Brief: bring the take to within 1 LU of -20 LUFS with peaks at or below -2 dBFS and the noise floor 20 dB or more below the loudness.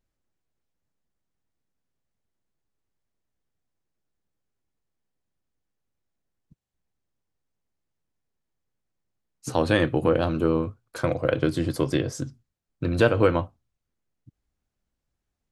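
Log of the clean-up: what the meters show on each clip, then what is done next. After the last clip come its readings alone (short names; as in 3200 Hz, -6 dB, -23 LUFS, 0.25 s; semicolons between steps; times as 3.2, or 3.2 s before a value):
loudness -24.5 LUFS; peak -5.5 dBFS; loudness target -20.0 LUFS
-> gain +4.5 dB; limiter -2 dBFS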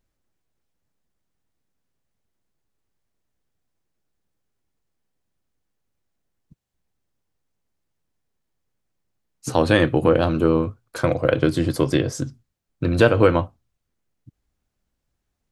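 loudness -20.0 LUFS; peak -2.0 dBFS; noise floor -77 dBFS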